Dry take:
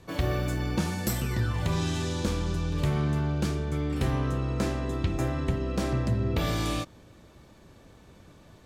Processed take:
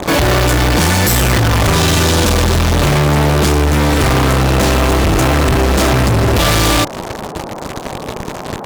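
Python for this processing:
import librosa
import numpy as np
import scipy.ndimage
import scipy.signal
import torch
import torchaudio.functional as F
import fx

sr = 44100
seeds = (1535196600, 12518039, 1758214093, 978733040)

y = fx.dynamic_eq(x, sr, hz=190.0, q=1.3, threshold_db=-42.0, ratio=4.0, max_db=-6)
y = fx.fuzz(y, sr, gain_db=52.0, gate_db=-48.0)
y = fx.dmg_noise_band(y, sr, seeds[0], low_hz=120.0, high_hz=990.0, level_db=-30.0)
y = y * librosa.db_to_amplitude(2.5)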